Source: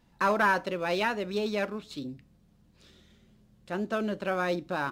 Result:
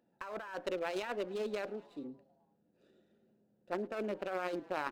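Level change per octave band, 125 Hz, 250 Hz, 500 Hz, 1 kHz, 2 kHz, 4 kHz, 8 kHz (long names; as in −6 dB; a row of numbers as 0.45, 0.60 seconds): −14.5, −10.0, −7.0, −12.0, −13.5, −10.5, −9.0 decibels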